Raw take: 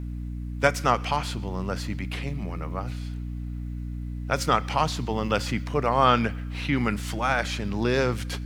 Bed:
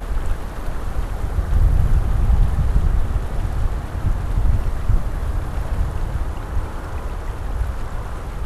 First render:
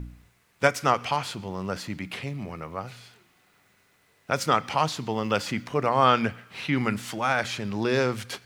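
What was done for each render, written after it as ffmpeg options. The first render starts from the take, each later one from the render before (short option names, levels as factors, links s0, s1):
-af "bandreject=f=60:t=h:w=4,bandreject=f=120:t=h:w=4,bandreject=f=180:t=h:w=4,bandreject=f=240:t=h:w=4,bandreject=f=300:t=h:w=4"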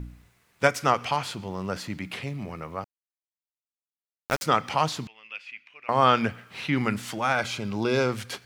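-filter_complex "[0:a]asettb=1/sr,asplit=3[s0][s1][s2];[s0]atrim=end=2.844[s3];[s1]atrim=start=2.84:end=4.43,asetpts=PTS-STARTPTS,afade=t=in:d=0.004:c=qsin,afade=t=out:st=1.586:d=0.004:c=qsin,aeval=exprs='val(0)*gte(abs(val(0)),0.0596)':c=same[s4];[s2]atrim=start=4.426[s5];[s3][s4]acrossfade=d=0.004:c1=hsin:c2=qsin[s6];[s6][s5]acrossfade=d=0.004:c1=qsin:c2=hsin,asettb=1/sr,asplit=3[s7][s8][s9];[s7]atrim=end=5.074[s10];[s8]atrim=start=5.07:end=5.89,asetpts=PTS-STARTPTS,afade=t=in:d=0.004:c=qsin,afade=t=out:st=0.816:d=0.004:c=qsin,bandpass=f=2500:t=q:w=7.9[s11];[s9]atrim=start=5.886[s12];[s10][s11]acrossfade=d=0.004:c1=hsin:c2=qsin[s13];[s13][s12]acrossfade=d=0.004:c1=qsin:c2=hsin,asettb=1/sr,asplit=3[s14][s15][s16];[s14]atrim=end=7.354[s17];[s15]atrim=start=7.35:end=8.09,asetpts=PTS-STARTPTS,afade=t=in:d=0.004:c=qsin,afade=t=out:st=0.736:d=0.004:c=qsin,asuperstop=centerf=1800:order=12:qfactor=7[s18];[s16]atrim=start=8.086[s19];[s17][s18]acrossfade=d=0.004:c1=hsin:c2=qsin[s20];[s20][s19]acrossfade=d=0.004:c1=qsin:c2=hsin"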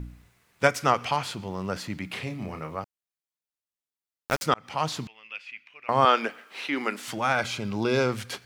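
-filter_complex "[0:a]asettb=1/sr,asplit=3[s0][s1][s2];[s0]atrim=end=2.124[s3];[s1]atrim=start=2.12:end=2.76,asetpts=PTS-STARTPTS,afade=t=in:d=0.004:c=qsin,afade=t=out:st=0.636:d=0.004:c=qsin,asplit=2[s4][s5];[s5]adelay=32,volume=0.473[s6];[s4][s6]amix=inputs=2:normalize=0,atrim=end_sample=28224[s7];[s2]atrim=start=2.756[s8];[s3][s7]acrossfade=d=0.004:c1=hsin:c2=qsin[s9];[s9][s8]acrossfade=d=0.004:c1=qsin:c2=hsin,asettb=1/sr,asplit=3[s10][s11][s12];[s10]atrim=end=6.054[s13];[s11]atrim=start=6.05:end=7.08,asetpts=PTS-STARTPTS,afade=t=in:d=0.004:c=qsin,afade=t=out:st=1.026:d=0.004:c=qsin,highpass=f=290:w=0.5412,highpass=f=290:w=1.3066[s14];[s12]atrim=start=7.076[s15];[s13][s14]acrossfade=d=0.004:c1=hsin:c2=qsin[s16];[s16][s15]acrossfade=d=0.004:c1=qsin:c2=hsin,asplit=2[s17][s18];[s17]atrim=end=4.54,asetpts=PTS-STARTPTS,afade=t=out:st=4.536:d=0.004:c=hsin[s19];[s18]atrim=start=4.54,asetpts=PTS-STARTPTS,afade=t=in:d=0.41[s20];[s19][s20]concat=n=2:v=0:a=1"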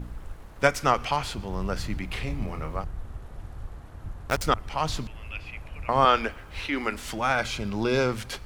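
-filter_complex "[1:a]volume=0.133[s0];[0:a][s0]amix=inputs=2:normalize=0"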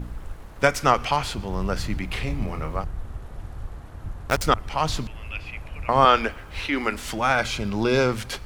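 -af "volume=1.5,alimiter=limit=0.794:level=0:latency=1"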